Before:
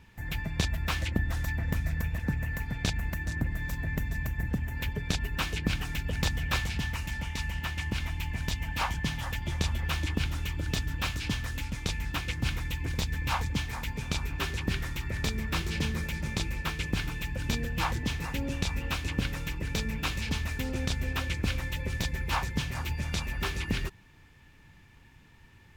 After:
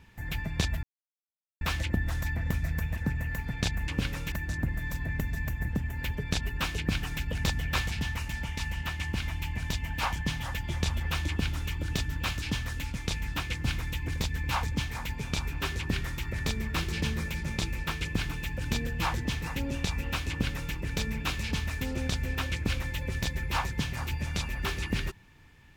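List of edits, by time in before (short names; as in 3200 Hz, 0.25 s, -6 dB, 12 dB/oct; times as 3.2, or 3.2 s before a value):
0.83 insert silence 0.78 s
19.08–19.52 copy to 3.1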